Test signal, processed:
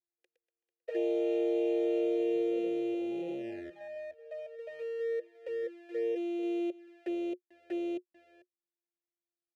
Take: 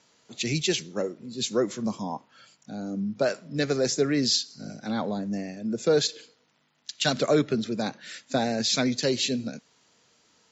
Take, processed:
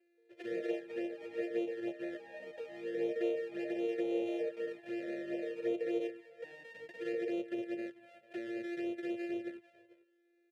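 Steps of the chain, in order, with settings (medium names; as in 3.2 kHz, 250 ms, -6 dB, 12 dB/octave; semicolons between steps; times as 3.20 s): sorted samples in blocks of 128 samples; high-pass 47 Hz 24 dB/octave; peak limiter -18.5 dBFS; peaking EQ 360 Hz +13.5 dB 0.23 oct; ever faster or slower copies 174 ms, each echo +5 st, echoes 3, each echo -6 dB; on a send: delay 444 ms -17.5 dB; on the sum: touch-sensitive flanger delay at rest 2.5 ms, full sweep at -16.5 dBFS; vowel filter e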